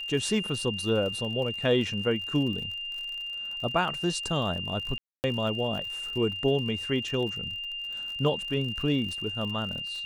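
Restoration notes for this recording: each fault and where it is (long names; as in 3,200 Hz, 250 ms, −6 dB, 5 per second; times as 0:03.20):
surface crackle 63 per second −36 dBFS
whistle 2,800 Hz −33 dBFS
0:04.98–0:05.24: drop-out 259 ms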